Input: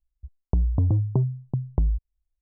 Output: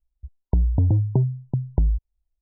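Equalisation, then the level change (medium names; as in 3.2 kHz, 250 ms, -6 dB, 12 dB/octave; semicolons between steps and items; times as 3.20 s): brick-wall FIR low-pass 1 kHz; +2.5 dB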